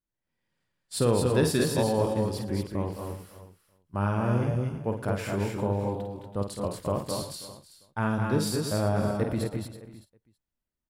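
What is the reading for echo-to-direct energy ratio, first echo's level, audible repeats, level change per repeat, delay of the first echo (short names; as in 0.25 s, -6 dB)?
-0.5 dB, -7.0 dB, 9, no steady repeat, 50 ms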